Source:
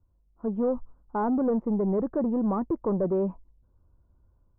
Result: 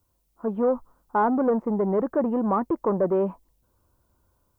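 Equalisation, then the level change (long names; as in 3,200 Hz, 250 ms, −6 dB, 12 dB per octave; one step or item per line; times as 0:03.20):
spectral tilt +3.5 dB per octave
+8.0 dB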